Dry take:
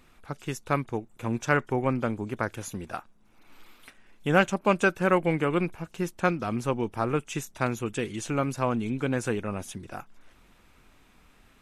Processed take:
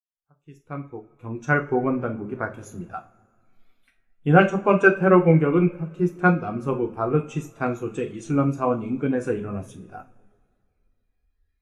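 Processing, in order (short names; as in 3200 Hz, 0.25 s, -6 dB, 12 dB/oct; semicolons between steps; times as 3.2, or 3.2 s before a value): opening faded in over 1.72 s; spectral noise reduction 12 dB; two-slope reverb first 0.43 s, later 3.3 s, from -18 dB, DRR 2 dB; spectral expander 1.5:1; gain +4.5 dB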